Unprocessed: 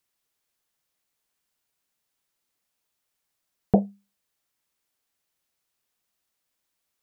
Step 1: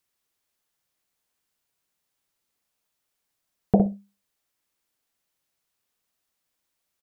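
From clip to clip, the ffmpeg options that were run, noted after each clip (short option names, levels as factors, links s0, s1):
-filter_complex "[0:a]asplit=2[s0][s1];[s1]adelay=60,lowpass=f=810:p=1,volume=0.596,asplit=2[s2][s3];[s3]adelay=60,lowpass=f=810:p=1,volume=0.17,asplit=2[s4][s5];[s5]adelay=60,lowpass=f=810:p=1,volume=0.17[s6];[s0][s2][s4][s6]amix=inputs=4:normalize=0"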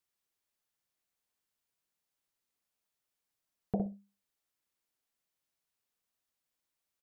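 -af "alimiter=limit=0.224:level=0:latency=1:release=408,volume=0.398"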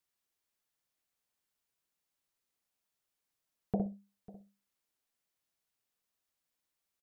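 -af "aecho=1:1:546:0.1"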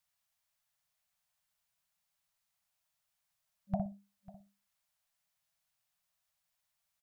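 -af "afftfilt=real='re*(1-between(b*sr/4096,200,560))':imag='im*(1-between(b*sr/4096,200,560))':win_size=4096:overlap=0.75,volume=1.41"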